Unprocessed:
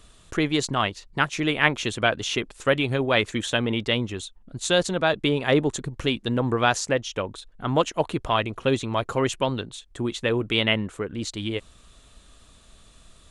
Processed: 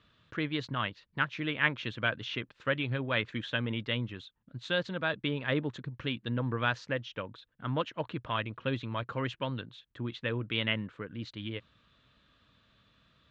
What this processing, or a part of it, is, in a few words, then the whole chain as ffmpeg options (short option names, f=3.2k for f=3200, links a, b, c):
guitar cabinet: -af "highpass=100,equalizer=f=120:t=q:w=4:g=6,equalizer=f=390:t=q:w=4:g=-7,equalizer=f=740:t=q:w=4:g=-9,equalizer=f=1.6k:t=q:w=4:g=4,lowpass=f=3.9k:w=0.5412,lowpass=f=3.9k:w=1.3066,volume=-8.5dB"